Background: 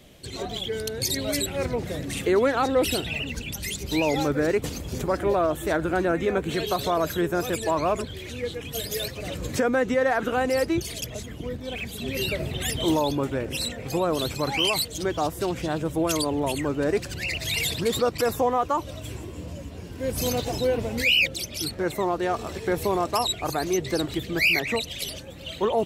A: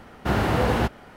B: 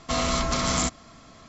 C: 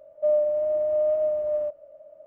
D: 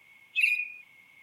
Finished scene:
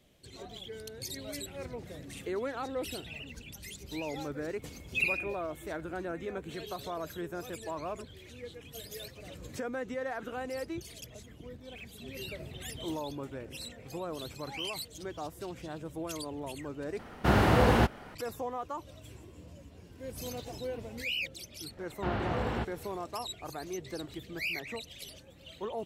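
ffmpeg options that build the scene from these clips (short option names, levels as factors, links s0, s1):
-filter_complex "[1:a]asplit=2[s0][s1];[0:a]volume=0.2[s2];[s1]lowpass=f=4200:w=0.5412,lowpass=f=4200:w=1.3066[s3];[s2]asplit=2[s4][s5];[s4]atrim=end=16.994[s6];[s0]atrim=end=1.16,asetpts=PTS-STARTPTS,volume=0.841[s7];[s5]atrim=start=18.146[s8];[4:a]atrim=end=1.22,asetpts=PTS-STARTPTS,volume=0.562,afade=t=in:d=0.004:c=hsin,afade=t=out:st=1.216:d=0.004:c=hsin,adelay=4590[s9];[s3]atrim=end=1.16,asetpts=PTS-STARTPTS,volume=0.282,afade=t=in:d=0.004:c=hsin,afade=t=out:st=1.156:d=0.004:c=hsin,adelay=21770[s10];[s6][s7]acrossfade=d=0.004:c1=hsin:c2=hsin[s11];[s11][s8]acrossfade=d=0.004:c1=hsin:c2=hsin[s12];[s12][s9][s10]amix=inputs=3:normalize=0"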